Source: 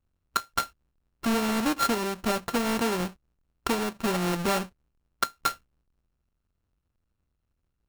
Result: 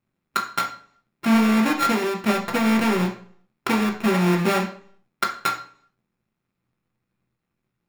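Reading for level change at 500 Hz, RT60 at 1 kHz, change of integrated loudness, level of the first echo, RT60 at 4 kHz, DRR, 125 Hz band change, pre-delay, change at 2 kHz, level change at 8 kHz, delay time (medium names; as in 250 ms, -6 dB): +4.5 dB, 0.50 s, +6.0 dB, no echo, 0.45 s, 1.0 dB, +8.5 dB, 3 ms, +7.0 dB, -0.5 dB, no echo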